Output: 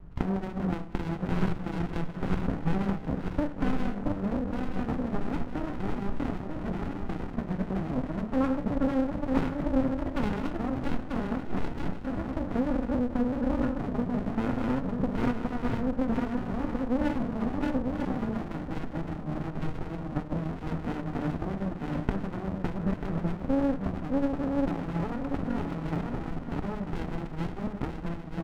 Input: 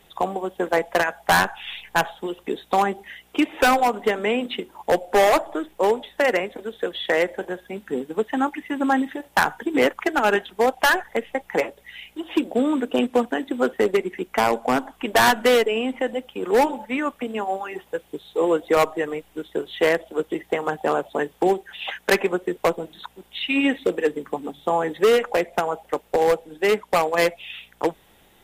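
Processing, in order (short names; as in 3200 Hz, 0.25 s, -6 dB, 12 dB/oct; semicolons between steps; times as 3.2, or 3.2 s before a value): regenerating reverse delay 0.469 s, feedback 50%, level -2 dB; steep low-pass 1400 Hz 48 dB/oct; tilt -2.5 dB/oct; doubler 24 ms -13.5 dB; de-hum 71.97 Hz, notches 35; compressor 10:1, threshold -24 dBFS, peak gain reduction 15.5 dB; band shelf 540 Hz -12 dB; echo 1.086 s -14 dB; on a send at -9.5 dB: reverb RT60 0.40 s, pre-delay 7 ms; on the sum: running maximum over 65 samples; gain +6.5 dB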